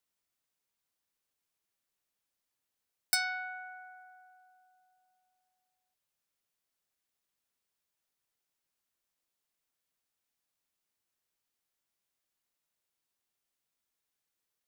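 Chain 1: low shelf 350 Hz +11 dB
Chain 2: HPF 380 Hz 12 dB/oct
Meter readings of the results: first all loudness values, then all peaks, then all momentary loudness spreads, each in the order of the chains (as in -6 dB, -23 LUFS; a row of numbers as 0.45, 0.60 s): -33.5, -33.5 LUFS; -13.5, -12.0 dBFS; 21, 20 LU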